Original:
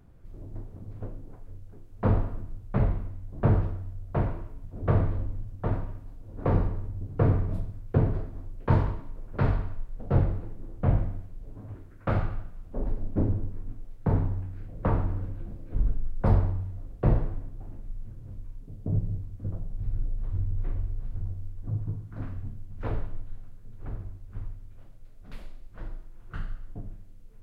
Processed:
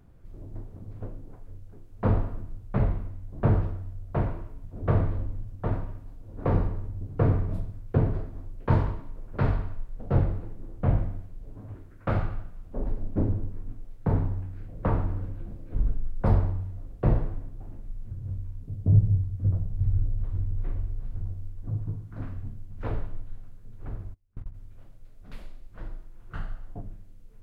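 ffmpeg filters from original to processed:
-filter_complex "[0:a]asettb=1/sr,asplit=3[s0][s1][s2];[s0]atrim=end=18.104[s3];[s1]atrim=start=18.1:end=20.25,asetpts=PTS-STARTPTS,afade=t=in:d=0.004:c=qsin,afade=t=out:st=2.146:d=0.004:c=qsin,equalizer=f=85:w=0.91:g=11[s4];[s2]atrim=start=20.246[s5];[s3][s4]acrossfade=d=0.004:c1=hsin:c2=qsin[s6];[s6][s5]acrossfade=d=0.004:c1=qsin:c2=hsin,asplit=3[s7][s8][s9];[s7]afade=t=out:st=24.13:d=0.02[s10];[s8]agate=range=0.0398:threshold=0.0224:ratio=16:release=100:detection=peak,afade=t=in:st=24.13:d=0.02,afade=t=out:st=24.53:d=0.02[s11];[s9]afade=t=in:st=24.53:d=0.02[s12];[s10][s11][s12]amix=inputs=3:normalize=0,asettb=1/sr,asplit=3[s13][s14][s15];[s13]atrim=end=26.354[s16];[s14]atrim=start=26.35:end=26.82,asetpts=PTS-STARTPTS,afade=t=in:d=0.004:c=qsin,afade=t=out:st=0.466:d=0.004:c=qsin,equalizer=f=770:w=1.5:g=8[s17];[s15]atrim=start=26.816[s18];[s16][s17]acrossfade=d=0.004:c1=hsin:c2=qsin[s19];[s19][s18]acrossfade=d=0.004:c1=qsin:c2=hsin"

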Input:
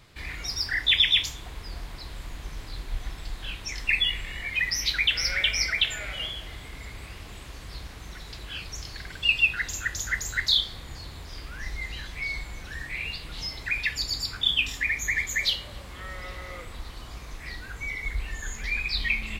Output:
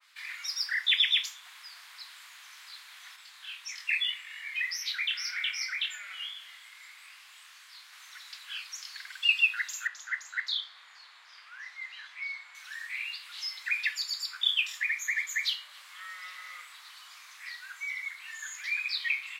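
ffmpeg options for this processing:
-filter_complex "[0:a]asettb=1/sr,asplit=3[s0][s1][s2];[s0]atrim=end=3.164[s3];[s1]atrim=start=3.16:end=7.93,asetpts=PTS-STARTPTS,afade=t=in:d=0.004:c=qsin,afade=t=out:st=4.766:d=0.004:c=qsin,flanger=delay=22.5:depth=5:speed=1.8[s4];[s2]atrim=start=7.926[s5];[s3][s4]acrossfade=d=0.004:c1=hsin:c2=qsin[s6];[s6][s5]acrossfade=d=0.004:c1=qsin:c2=hsin,asettb=1/sr,asplit=3[s7][s8][s9];[s7]atrim=end=9.874[s10];[s8]atrim=start=9.87:end=12.55,asetpts=PTS-STARTPTS,afade=t=in:d=0.004:c=qsin,afade=t=out:st=2.676:d=0.004:c=qsin,aemphasis=mode=reproduction:type=riaa[s11];[s9]atrim=start=12.546[s12];[s10][s11]acrossfade=d=0.004:c1=hsin:c2=qsin[s13];[s13][s12]acrossfade=d=0.004:c1=qsin:c2=hsin,highpass=f=1200:w=0.5412,highpass=f=1200:w=1.3066,adynamicequalizer=threshold=0.0112:dfrequency=1800:dqfactor=0.7:tfrequency=1800:tqfactor=0.7:attack=5:release=100:ratio=0.375:range=2:mode=cutabove:tftype=highshelf,volume=0.841"

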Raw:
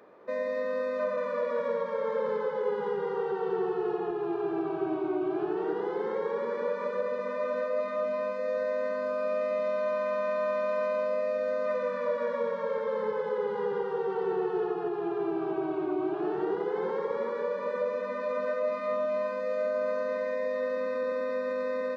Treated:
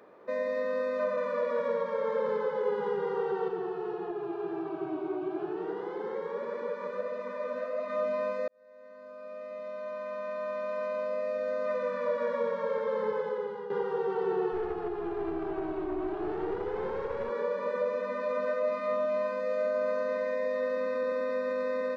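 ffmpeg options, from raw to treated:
-filter_complex "[0:a]asettb=1/sr,asplit=3[s0][s1][s2];[s0]atrim=end=3.484[s3];[s1]atrim=start=3.48:end=7.9,asetpts=PTS-STARTPTS,afade=t=in:d=0.004:c=qsin,afade=t=out:st=4.416:d=0.004:c=qsin,flanger=delay=2.7:depth=9.9:regen=54:speed=1.6:shape=triangular[s4];[s2]atrim=start=7.896[s5];[s3][s4]acrossfade=d=0.004:c1=hsin:c2=qsin[s6];[s6][s5]acrossfade=d=0.004:c1=qsin:c2=hsin,asettb=1/sr,asplit=3[s7][s8][s9];[s7]atrim=end=14.524[s10];[s8]atrim=start=14.52:end=17.3,asetpts=PTS-STARTPTS,afade=t=in:d=0.004:c=qsin,afade=t=out:st=2.776:d=0.004:c=qsin,aeval=exprs='(tanh(20*val(0)+0.45)-tanh(0.45))/20':c=same[s11];[s9]atrim=start=17.296[s12];[s10][s11]acrossfade=d=0.004:c1=hsin:c2=qsin[s13];[s13][s12]acrossfade=d=0.004:c1=qsin:c2=hsin,asplit=3[s14][s15][s16];[s14]atrim=end=8.48,asetpts=PTS-STARTPTS,afade=t=out:st=8.476:d=0.004:c=hsin[s17];[s15]atrim=start=8.48:end=13.7,asetpts=PTS-STARTPTS,afade=t=in:d=3.83,afade=t=out:st=4.67:d=0.55:silence=0.266073[s18];[s16]atrim=start=13.7,asetpts=PTS-STARTPTS,afade=t=in:d=0.004:c=hsin:silence=0.266073[s19];[s17][s18][s19]concat=n=3:v=0:a=1"

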